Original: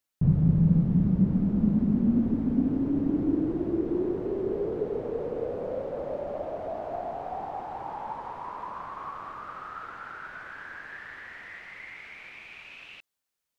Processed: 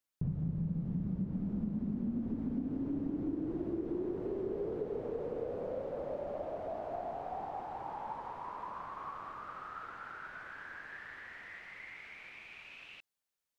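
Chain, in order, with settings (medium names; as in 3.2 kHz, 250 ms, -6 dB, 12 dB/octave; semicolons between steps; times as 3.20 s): compression, threshold -27 dBFS, peak gain reduction 10.5 dB; trim -5.5 dB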